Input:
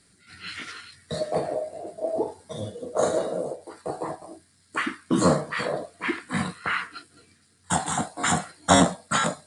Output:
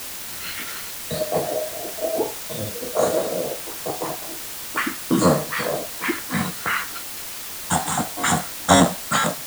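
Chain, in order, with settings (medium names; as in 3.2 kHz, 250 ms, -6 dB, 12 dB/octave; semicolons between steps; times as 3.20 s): word length cut 6-bit, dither triangular; trim +3 dB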